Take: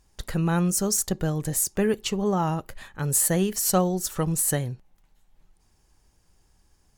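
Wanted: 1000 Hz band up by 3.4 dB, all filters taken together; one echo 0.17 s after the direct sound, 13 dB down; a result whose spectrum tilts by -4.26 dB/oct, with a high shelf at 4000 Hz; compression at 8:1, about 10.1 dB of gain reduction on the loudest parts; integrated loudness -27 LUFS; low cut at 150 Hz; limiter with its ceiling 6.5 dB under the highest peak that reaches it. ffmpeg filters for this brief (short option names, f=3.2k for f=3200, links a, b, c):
-af "highpass=150,equalizer=f=1k:t=o:g=5,highshelf=f=4k:g=-5,acompressor=threshold=-25dB:ratio=8,alimiter=limit=-21dB:level=0:latency=1,aecho=1:1:170:0.224,volume=4.5dB"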